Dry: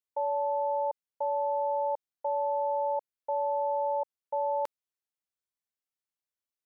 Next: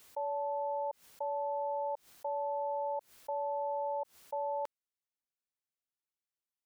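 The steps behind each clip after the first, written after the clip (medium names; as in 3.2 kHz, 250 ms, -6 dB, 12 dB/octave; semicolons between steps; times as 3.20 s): swell ahead of each attack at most 140 dB/s; trim -6 dB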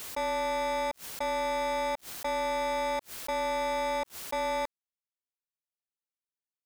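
waveshaping leveller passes 5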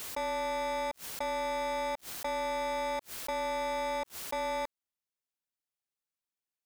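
compression 2:1, threshold -35 dBFS, peak gain reduction 3 dB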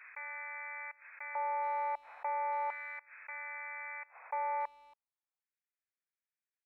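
FFT band-pass 450–2600 Hz; LFO high-pass square 0.37 Hz 820–1700 Hz; speakerphone echo 280 ms, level -22 dB; trim -6 dB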